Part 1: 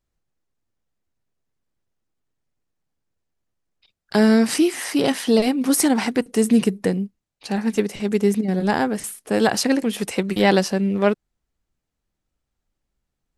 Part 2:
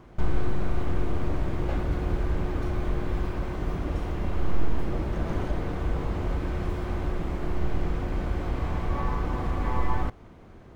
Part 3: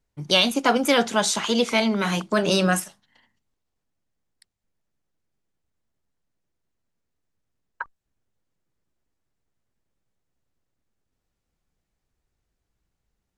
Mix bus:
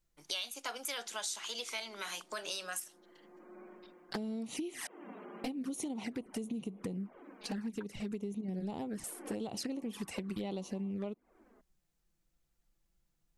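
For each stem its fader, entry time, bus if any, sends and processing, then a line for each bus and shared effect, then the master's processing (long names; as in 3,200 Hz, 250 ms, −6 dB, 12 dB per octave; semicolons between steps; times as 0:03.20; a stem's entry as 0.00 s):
−2.0 dB, 0.00 s, muted 0:04.87–0:05.44, bus A, no send, low-shelf EQ 260 Hz +5 dB
−9.0 dB, 0.85 s, bus A, no send, running median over 9 samples; Butterworth high-pass 210 Hz 48 dB per octave; gate on every frequency bin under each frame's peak −30 dB strong; automatic ducking −15 dB, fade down 0.80 s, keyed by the third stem
−10.5 dB, 0.00 s, no bus, no send, high-pass filter 340 Hz 12 dB per octave; spectral tilt +3.5 dB per octave
bus A: 0.0 dB, flanger swept by the level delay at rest 5.9 ms, full sweep at −16 dBFS; downward compressor, threshold −24 dBFS, peak gain reduction 12.5 dB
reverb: not used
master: downward compressor 3 to 1, threshold −40 dBFS, peak gain reduction 15.5 dB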